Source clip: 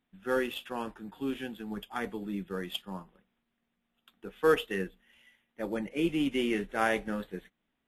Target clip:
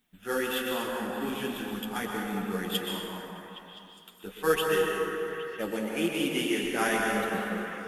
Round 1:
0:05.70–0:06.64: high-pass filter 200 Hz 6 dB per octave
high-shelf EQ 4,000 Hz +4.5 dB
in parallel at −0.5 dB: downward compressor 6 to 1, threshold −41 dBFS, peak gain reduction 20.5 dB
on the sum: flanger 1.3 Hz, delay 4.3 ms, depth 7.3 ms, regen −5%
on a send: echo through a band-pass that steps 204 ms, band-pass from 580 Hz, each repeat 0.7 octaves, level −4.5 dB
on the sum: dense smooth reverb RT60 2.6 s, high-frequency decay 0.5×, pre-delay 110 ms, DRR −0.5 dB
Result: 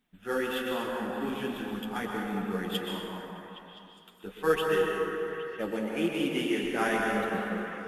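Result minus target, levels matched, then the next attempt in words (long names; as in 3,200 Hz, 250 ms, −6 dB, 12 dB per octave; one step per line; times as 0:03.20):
8,000 Hz band −7.0 dB
0:05.70–0:06.64: high-pass filter 200 Hz 6 dB per octave
high-shelf EQ 4,000 Hz +14.5 dB
in parallel at −0.5 dB: downward compressor 6 to 1, threshold −41 dBFS, peak gain reduction 21 dB
on the sum: flanger 1.3 Hz, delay 4.3 ms, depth 7.3 ms, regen −5%
on a send: echo through a band-pass that steps 204 ms, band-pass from 580 Hz, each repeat 0.7 octaves, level −4.5 dB
on the sum: dense smooth reverb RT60 2.6 s, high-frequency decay 0.5×, pre-delay 110 ms, DRR −0.5 dB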